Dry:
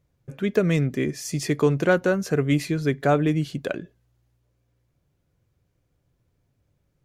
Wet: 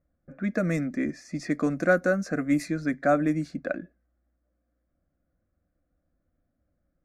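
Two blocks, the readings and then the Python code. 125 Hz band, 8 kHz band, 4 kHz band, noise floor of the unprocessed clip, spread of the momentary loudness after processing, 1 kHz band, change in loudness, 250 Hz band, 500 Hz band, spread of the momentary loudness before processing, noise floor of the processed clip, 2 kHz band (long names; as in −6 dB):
−9.0 dB, −9.0 dB, −11.5 dB, −71 dBFS, 10 LU, −2.0 dB, −3.5 dB, −2.0 dB, −4.5 dB, 9 LU, −77 dBFS, −1.0 dB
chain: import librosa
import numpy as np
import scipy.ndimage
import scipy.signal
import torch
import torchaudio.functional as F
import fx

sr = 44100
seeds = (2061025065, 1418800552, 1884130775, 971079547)

y = fx.env_lowpass(x, sr, base_hz=1500.0, full_db=-16.0)
y = fx.fixed_phaser(y, sr, hz=620.0, stages=8)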